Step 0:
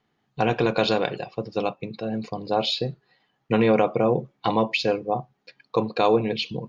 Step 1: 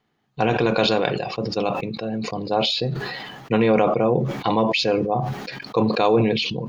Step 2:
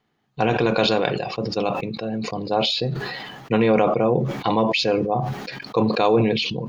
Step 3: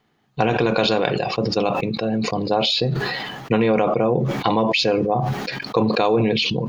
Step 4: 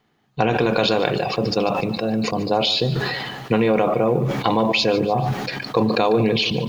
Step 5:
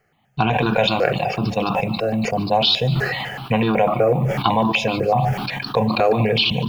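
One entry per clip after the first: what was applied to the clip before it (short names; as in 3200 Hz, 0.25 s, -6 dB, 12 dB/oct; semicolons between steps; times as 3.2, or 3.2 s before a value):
sustainer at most 33 dB/s; gain +1 dB
nothing audible
compressor 2.5:1, threshold -22 dBFS, peak gain reduction 7 dB; gain +5.5 dB
lo-fi delay 0.146 s, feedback 55%, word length 7-bit, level -15 dB
step phaser 8 Hz 970–2100 Hz; gain +4.5 dB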